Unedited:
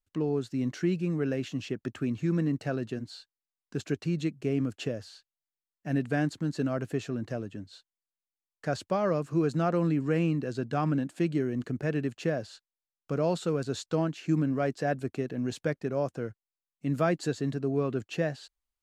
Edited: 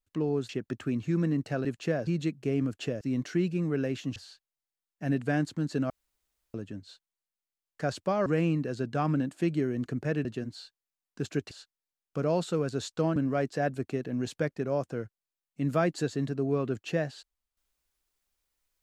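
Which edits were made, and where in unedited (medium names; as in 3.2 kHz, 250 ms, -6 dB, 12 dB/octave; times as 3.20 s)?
0.49–1.64 s: move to 5.00 s
2.80–4.06 s: swap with 12.03–12.45 s
6.74–7.38 s: room tone
9.10–10.04 s: delete
14.10–14.41 s: delete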